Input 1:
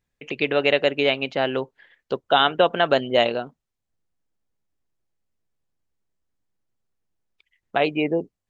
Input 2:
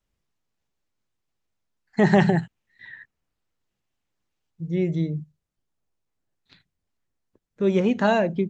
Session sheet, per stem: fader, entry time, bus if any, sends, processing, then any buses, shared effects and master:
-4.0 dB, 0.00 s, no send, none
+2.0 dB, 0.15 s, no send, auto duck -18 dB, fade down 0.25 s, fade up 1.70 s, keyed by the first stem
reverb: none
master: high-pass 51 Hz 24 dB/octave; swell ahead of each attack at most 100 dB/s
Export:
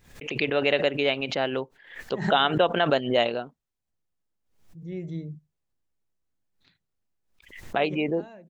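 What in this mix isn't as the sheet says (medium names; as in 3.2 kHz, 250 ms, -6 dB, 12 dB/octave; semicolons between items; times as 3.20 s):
stem 2 +2.0 dB -> -9.0 dB; master: missing high-pass 51 Hz 24 dB/octave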